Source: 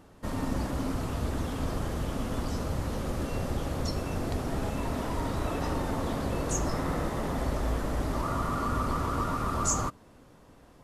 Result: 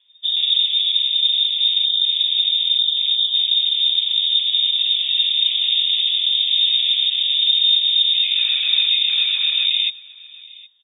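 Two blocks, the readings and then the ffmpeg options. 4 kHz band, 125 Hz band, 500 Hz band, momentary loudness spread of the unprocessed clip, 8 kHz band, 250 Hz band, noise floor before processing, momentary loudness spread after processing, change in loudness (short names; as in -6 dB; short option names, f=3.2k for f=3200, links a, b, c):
+34.5 dB, under -40 dB, under -30 dB, 3 LU, under -40 dB, under -40 dB, -55 dBFS, 2 LU, +16.5 dB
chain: -af "afwtdn=0.02,lowshelf=f=430:g=11.5,aecho=1:1:767:0.0794,lowpass=f=3.1k:t=q:w=0.5098,lowpass=f=3.1k:t=q:w=0.6013,lowpass=f=3.1k:t=q:w=0.9,lowpass=f=3.1k:t=q:w=2.563,afreqshift=-3700,volume=2.5dB"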